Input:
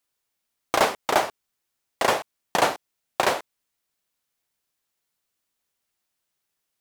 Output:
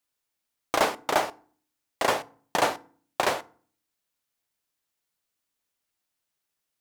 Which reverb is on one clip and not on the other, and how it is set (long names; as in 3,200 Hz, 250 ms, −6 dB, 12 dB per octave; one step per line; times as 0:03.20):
feedback delay network reverb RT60 0.46 s, low-frequency decay 1.45×, high-frequency decay 0.65×, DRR 15 dB
level −3 dB